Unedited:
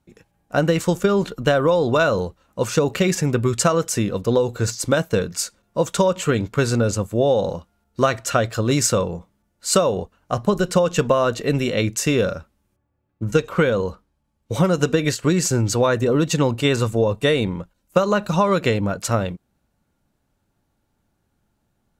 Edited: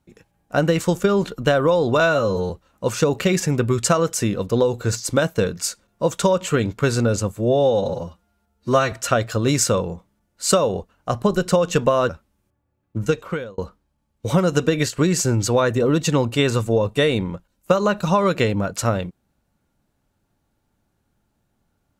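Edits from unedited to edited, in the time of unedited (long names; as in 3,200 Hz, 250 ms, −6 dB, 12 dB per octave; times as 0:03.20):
0:02.00–0:02.25: time-stretch 2×
0:07.11–0:08.15: time-stretch 1.5×
0:11.32–0:12.35: remove
0:13.24–0:13.84: fade out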